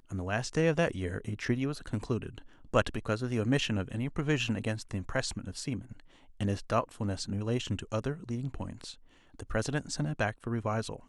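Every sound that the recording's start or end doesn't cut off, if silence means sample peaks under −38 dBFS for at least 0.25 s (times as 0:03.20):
0:02.74–0:06.00
0:06.41–0:08.92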